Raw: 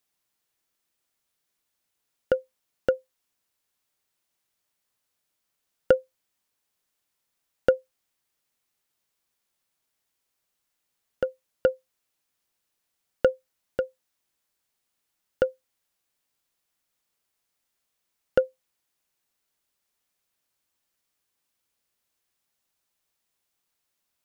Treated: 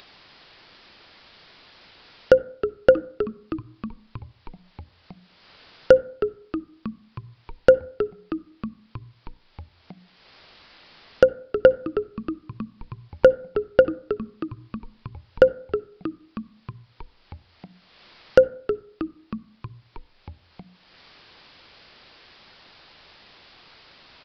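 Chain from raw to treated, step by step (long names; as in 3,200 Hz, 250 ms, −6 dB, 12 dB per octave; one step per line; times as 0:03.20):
brickwall limiter −14 dBFS, peak gain reduction 7.5 dB
on a send at −22 dB: convolution reverb RT60 0.55 s, pre-delay 52 ms
on the sum: downsampling to 11,025 Hz
echo with shifted repeats 317 ms, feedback 61%, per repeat −100 Hz, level −11.5 dB
in parallel at 0 dB: upward compression, threshold −36 dBFS
on the sum: mains-hum notches 60/120/180/240/300 Hz
level +6.5 dB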